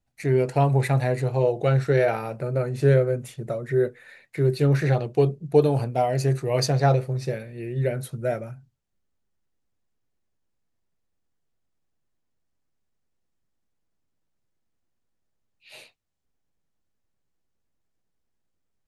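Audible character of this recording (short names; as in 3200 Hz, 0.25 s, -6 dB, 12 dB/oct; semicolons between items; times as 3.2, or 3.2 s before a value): noise floor -75 dBFS; spectral tilt -6.5 dB/oct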